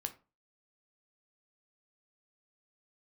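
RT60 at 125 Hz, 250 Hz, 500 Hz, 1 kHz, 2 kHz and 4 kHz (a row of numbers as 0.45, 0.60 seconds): 0.40, 0.35, 0.35, 0.30, 0.25, 0.20 seconds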